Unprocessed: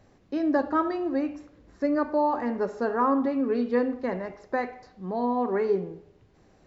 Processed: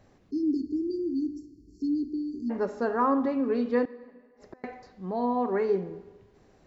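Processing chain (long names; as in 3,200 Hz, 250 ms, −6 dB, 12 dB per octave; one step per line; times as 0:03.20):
0:00.31–0:02.50: time-frequency box erased 450–4,200 Hz
0:03.85–0:04.64: gate with flip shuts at −28 dBFS, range −34 dB
on a send: convolution reverb RT60 1.6 s, pre-delay 40 ms, DRR 19 dB
on the sum: level −1 dB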